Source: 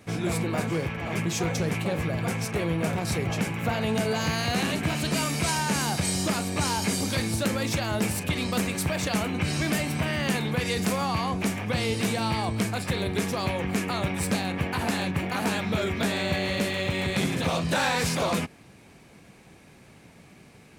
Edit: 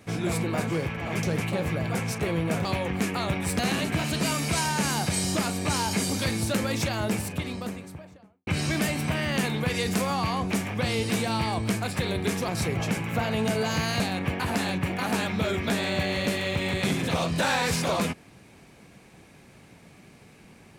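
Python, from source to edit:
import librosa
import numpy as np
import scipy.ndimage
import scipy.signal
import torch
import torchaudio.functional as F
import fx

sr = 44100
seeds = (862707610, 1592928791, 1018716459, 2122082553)

y = fx.studio_fade_out(x, sr, start_s=7.72, length_s=1.66)
y = fx.edit(y, sr, fx.cut(start_s=1.23, length_s=0.33),
    fx.swap(start_s=2.98, length_s=1.52, other_s=13.39, other_length_s=0.94), tone=tone)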